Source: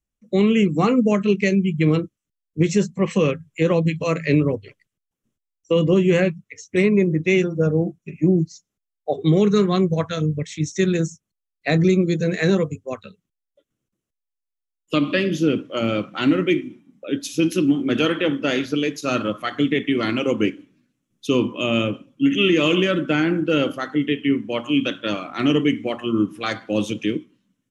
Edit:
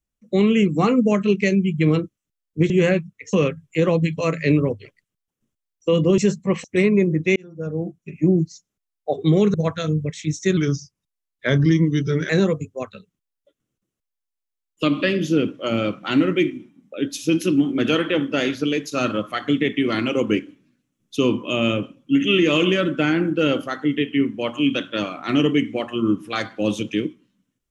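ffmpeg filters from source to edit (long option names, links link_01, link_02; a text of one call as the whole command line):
ffmpeg -i in.wav -filter_complex "[0:a]asplit=9[link_01][link_02][link_03][link_04][link_05][link_06][link_07][link_08][link_09];[link_01]atrim=end=2.702[link_10];[link_02]atrim=start=6.008:end=6.642[link_11];[link_03]atrim=start=3.158:end=6.012[link_12];[link_04]atrim=start=2.698:end=3.162[link_13];[link_05]atrim=start=6.638:end=7.36,asetpts=PTS-STARTPTS,afade=type=out:start_time=0.718:duration=0.004:curve=hsin[link_14];[link_06]atrim=start=7.36:end=9.542,asetpts=PTS-STARTPTS,afade=type=in:duration=0.83[link_15];[link_07]atrim=start=9.868:end=10.904[link_16];[link_08]atrim=start=10.9:end=12.4,asetpts=PTS-STARTPTS,asetrate=38367,aresample=44100,atrim=end_sample=76034,asetpts=PTS-STARTPTS[link_17];[link_09]atrim=start=12.396[link_18];[link_10][link_11]acrossfade=duration=0.004:curve1=hsin:curve2=hsin[link_19];[link_19][link_12]acrossfade=duration=0.004:curve1=hsin:curve2=hsin[link_20];[link_20][link_13]acrossfade=duration=0.004:curve1=hsin:curve2=hsin[link_21];[link_14][link_15]concat=n=2:v=0:a=1[link_22];[link_21][link_22]acrossfade=duration=0.004:curve1=hsin:curve2=hsin[link_23];[link_23][link_16]acrossfade=duration=0.004:curve1=hsin:curve2=hsin[link_24];[link_24][link_17]acrossfade=duration=0.004:curve1=hsin:curve2=hsin[link_25];[link_25][link_18]acrossfade=duration=0.004:curve1=hsin:curve2=hsin" out.wav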